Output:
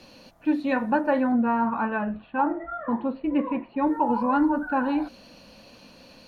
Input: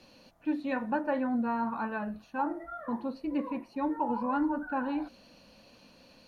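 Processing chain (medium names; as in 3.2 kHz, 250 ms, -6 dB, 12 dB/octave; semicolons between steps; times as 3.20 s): 1.32–3.87 s: steep low-pass 3.5 kHz 48 dB/octave; trim +7.5 dB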